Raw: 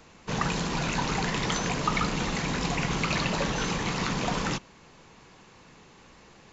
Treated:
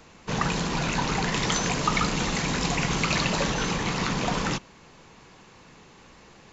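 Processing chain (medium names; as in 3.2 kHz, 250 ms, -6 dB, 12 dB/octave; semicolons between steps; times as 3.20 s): 1.32–3.54 s: treble shelf 5.3 kHz +6 dB; trim +2 dB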